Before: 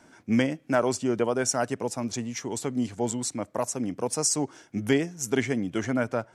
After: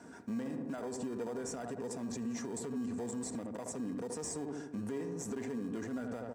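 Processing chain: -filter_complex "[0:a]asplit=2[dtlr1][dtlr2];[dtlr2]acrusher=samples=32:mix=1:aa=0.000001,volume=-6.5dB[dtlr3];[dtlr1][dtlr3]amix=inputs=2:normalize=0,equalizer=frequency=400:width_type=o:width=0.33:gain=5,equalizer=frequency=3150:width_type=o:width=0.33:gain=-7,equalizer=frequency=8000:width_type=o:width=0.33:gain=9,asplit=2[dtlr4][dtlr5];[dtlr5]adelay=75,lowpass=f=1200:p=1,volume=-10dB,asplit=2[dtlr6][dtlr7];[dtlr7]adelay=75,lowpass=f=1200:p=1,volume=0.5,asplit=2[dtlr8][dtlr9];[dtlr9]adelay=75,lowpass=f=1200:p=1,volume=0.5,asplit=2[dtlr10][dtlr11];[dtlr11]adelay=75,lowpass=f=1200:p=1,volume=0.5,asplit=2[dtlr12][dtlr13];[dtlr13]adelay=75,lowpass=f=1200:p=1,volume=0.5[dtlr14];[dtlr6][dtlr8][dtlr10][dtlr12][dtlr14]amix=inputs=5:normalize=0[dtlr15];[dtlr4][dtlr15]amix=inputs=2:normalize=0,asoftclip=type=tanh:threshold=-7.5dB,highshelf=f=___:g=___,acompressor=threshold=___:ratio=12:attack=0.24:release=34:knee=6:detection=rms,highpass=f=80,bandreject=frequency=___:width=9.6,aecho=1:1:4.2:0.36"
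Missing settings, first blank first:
4900, -8.5, -35dB, 2200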